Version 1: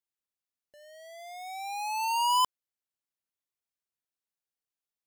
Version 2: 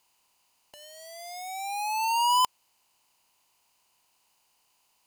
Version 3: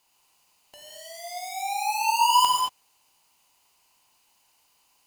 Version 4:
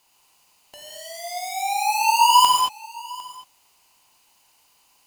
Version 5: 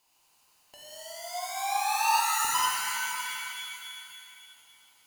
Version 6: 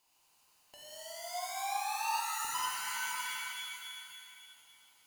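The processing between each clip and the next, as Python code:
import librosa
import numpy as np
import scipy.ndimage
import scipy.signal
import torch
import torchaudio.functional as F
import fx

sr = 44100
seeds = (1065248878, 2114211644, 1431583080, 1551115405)

y1 = fx.bin_compress(x, sr, power=0.6)
y1 = fx.leveller(y1, sr, passes=1)
y1 = y1 * librosa.db_to_amplitude(-2.0)
y2 = fx.rev_gated(y1, sr, seeds[0], gate_ms=250, shape='flat', drr_db=-2.0)
y3 = y2 + 10.0 ** (-20.5 / 20.0) * np.pad(y2, (int(754 * sr / 1000.0), 0))[:len(y2)]
y3 = y3 * librosa.db_to_amplitude(5.0)
y4 = fx.spec_erase(y3, sr, start_s=2.2, length_s=0.35, low_hz=510.0, high_hz=6600.0)
y4 = fx.rev_shimmer(y4, sr, seeds[1], rt60_s=2.4, semitones=7, shimmer_db=-2, drr_db=1.5)
y4 = y4 * librosa.db_to_amplitude(-7.5)
y5 = fx.rider(y4, sr, range_db=3, speed_s=0.5)
y5 = y5 * librosa.db_to_amplitude(-6.5)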